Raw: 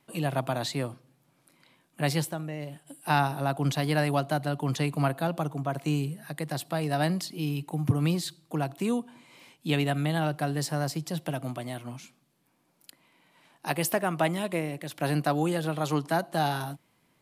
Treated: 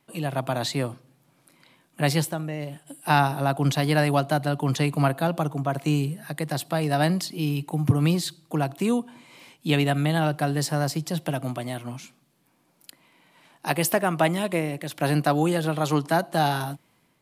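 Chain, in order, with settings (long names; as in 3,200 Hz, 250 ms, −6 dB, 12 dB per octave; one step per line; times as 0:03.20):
automatic gain control gain up to 4.5 dB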